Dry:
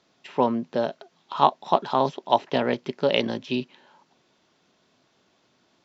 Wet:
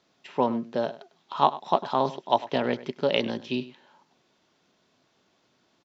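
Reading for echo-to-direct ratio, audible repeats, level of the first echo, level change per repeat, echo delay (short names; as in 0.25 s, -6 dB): -17.0 dB, 1, -17.0 dB, no steady repeat, 0.1 s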